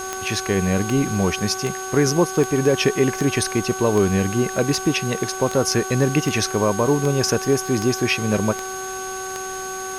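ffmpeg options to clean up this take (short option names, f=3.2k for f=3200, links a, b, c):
-af "adeclick=t=4,bandreject=f=378.3:t=h:w=4,bandreject=f=756.6:t=h:w=4,bandreject=f=1.1349k:t=h:w=4,bandreject=f=1.5132k:t=h:w=4,bandreject=f=6.5k:w=30,afwtdn=0.014"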